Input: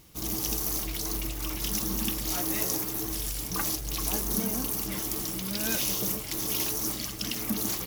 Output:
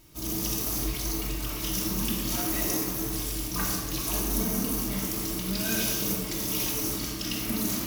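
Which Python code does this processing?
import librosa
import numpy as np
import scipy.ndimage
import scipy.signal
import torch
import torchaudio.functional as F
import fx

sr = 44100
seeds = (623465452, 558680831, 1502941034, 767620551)

y = fx.room_shoebox(x, sr, seeds[0], volume_m3=1400.0, walls='mixed', distance_m=2.8)
y = y * librosa.db_to_amplitude(-3.5)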